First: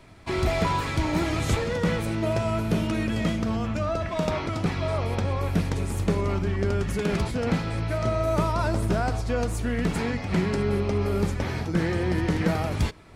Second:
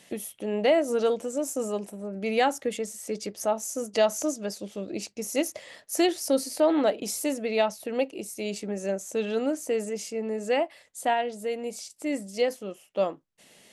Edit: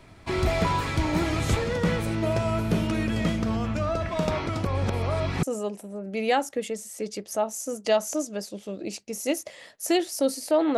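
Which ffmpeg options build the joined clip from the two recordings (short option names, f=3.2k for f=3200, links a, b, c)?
-filter_complex "[0:a]apad=whole_dur=10.77,atrim=end=10.77,asplit=2[a][b];[a]atrim=end=4.652[c];[b]atrim=start=4.648:end=5.432,asetpts=PTS-STARTPTS,areverse[d];[1:a]atrim=start=1.518:end=6.86[e];[c][d]acrossfade=d=0.004:c1=hsin:c2=hsin[f];[f][e]acrossfade=d=0.004:c1=hsin:c2=hsin"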